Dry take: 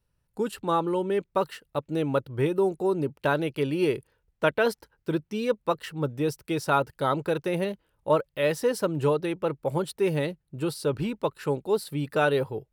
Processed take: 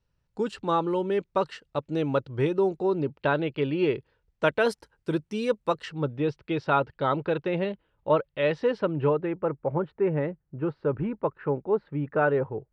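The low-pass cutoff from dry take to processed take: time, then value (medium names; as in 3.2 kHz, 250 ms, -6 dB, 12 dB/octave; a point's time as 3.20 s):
low-pass 24 dB/octave
2.47 s 6.6 kHz
3.41 s 3.8 kHz
3.92 s 3.8 kHz
4.62 s 9.8 kHz
5.66 s 9.8 kHz
6.14 s 3.7 kHz
8.69 s 3.7 kHz
9.39 s 1.9 kHz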